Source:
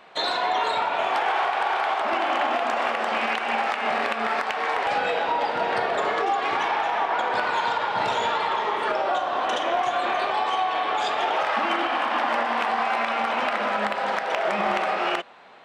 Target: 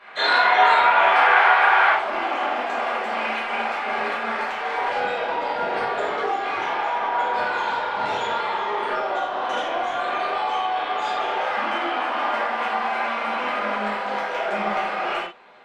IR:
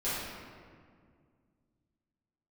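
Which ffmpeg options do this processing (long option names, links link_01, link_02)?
-filter_complex "[0:a]asetnsamples=nb_out_samples=441:pad=0,asendcmd='1.9 equalizer g 2',equalizer=frequency=1700:width_type=o:width=2:gain=15[link_01];[1:a]atrim=start_sample=2205,afade=type=out:start_time=0.16:duration=0.01,atrim=end_sample=7497[link_02];[link_01][link_02]afir=irnorm=-1:irlink=0,volume=-7.5dB"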